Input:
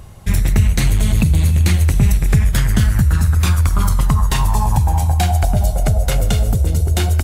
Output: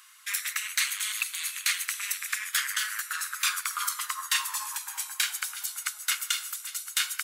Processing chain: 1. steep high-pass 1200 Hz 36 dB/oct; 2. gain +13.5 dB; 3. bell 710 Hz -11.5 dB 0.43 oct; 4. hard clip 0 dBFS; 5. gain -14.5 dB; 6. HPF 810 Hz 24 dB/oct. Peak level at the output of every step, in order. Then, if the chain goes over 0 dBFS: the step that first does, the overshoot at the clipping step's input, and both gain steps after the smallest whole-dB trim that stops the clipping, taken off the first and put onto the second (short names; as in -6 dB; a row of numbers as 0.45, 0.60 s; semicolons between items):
-7.0, +6.5, +6.0, 0.0, -14.5, -11.5 dBFS; step 2, 6.0 dB; step 2 +7.5 dB, step 5 -8.5 dB